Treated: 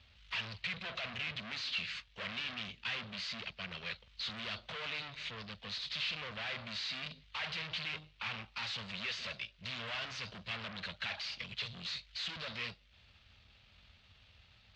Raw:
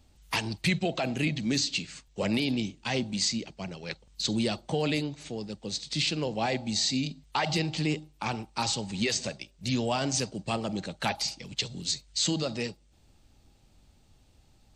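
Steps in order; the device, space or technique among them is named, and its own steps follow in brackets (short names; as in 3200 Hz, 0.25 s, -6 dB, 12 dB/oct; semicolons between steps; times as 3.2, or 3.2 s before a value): scooped metal amplifier (tube stage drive 44 dB, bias 0.55; speaker cabinet 100–3500 Hz, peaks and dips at 140 Hz -6 dB, 240 Hz +4 dB, 820 Hz -9 dB; passive tone stack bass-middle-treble 10-0-10); gain +16 dB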